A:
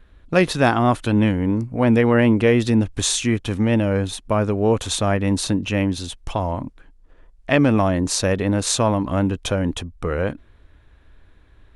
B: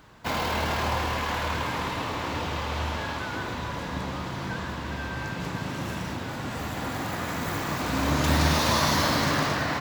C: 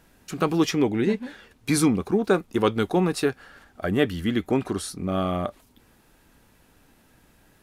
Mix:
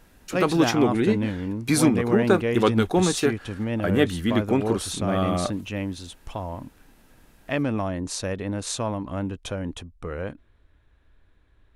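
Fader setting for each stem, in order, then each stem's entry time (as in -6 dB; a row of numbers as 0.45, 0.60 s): -9.0 dB, off, +1.0 dB; 0.00 s, off, 0.00 s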